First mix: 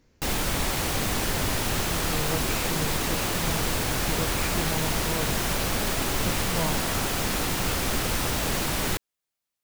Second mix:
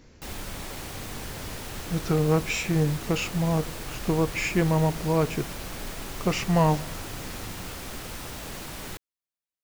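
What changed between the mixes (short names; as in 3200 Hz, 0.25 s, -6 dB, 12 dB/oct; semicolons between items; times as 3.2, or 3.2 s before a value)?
speech +10.0 dB; background -11.0 dB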